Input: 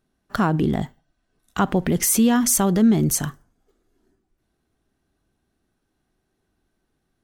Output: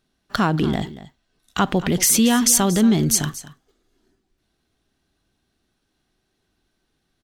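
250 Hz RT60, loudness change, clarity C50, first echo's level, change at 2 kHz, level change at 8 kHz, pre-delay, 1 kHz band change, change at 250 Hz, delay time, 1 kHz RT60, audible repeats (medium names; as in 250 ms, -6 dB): no reverb, +1.5 dB, no reverb, -16.0 dB, +3.5 dB, +4.0 dB, no reverb, +1.5 dB, 0.0 dB, 232 ms, no reverb, 1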